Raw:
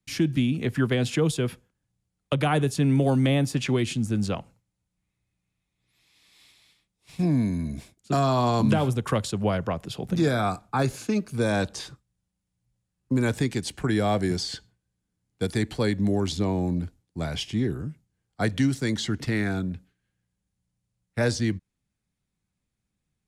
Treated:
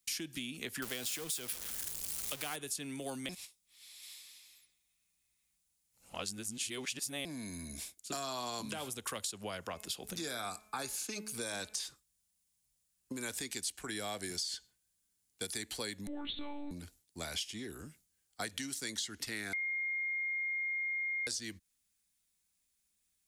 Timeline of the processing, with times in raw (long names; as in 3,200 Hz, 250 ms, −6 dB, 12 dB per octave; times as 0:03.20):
0:00.82–0:02.56: converter with a step at zero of −27 dBFS
0:03.29–0:07.25: reverse
0:09.64–0:11.82: hum removal 214.5 Hz, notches 12
0:16.07–0:16.71: one-pitch LPC vocoder at 8 kHz 290 Hz
0:19.53–0:21.27: beep over 2,130 Hz −22.5 dBFS
whole clip: first-order pre-emphasis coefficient 0.9; downward compressor 5 to 1, threshold −47 dBFS; parametric band 130 Hz −11.5 dB 1 octave; level +10.5 dB